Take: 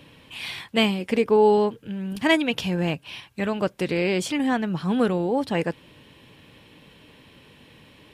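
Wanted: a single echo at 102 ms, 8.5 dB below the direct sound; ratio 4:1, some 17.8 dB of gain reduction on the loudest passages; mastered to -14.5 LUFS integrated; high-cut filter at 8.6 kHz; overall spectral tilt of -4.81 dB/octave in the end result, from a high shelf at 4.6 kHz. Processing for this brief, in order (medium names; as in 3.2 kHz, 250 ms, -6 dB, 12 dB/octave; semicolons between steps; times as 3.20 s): low-pass 8.6 kHz; treble shelf 4.6 kHz +6.5 dB; compression 4:1, threshold -36 dBFS; delay 102 ms -8.5 dB; trim +22.5 dB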